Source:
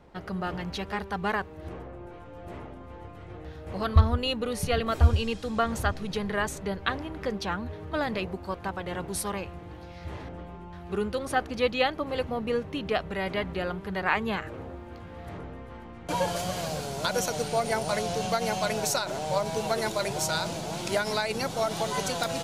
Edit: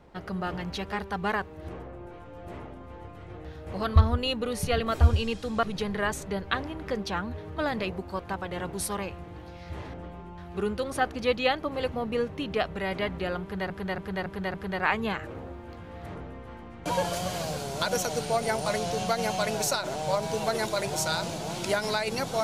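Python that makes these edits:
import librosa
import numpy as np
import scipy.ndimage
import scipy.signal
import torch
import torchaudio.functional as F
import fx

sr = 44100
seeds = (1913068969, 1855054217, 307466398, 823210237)

y = fx.edit(x, sr, fx.cut(start_s=5.63, length_s=0.35),
    fx.repeat(start_s=13.77, length_s=0.28, count=5), tone=tone)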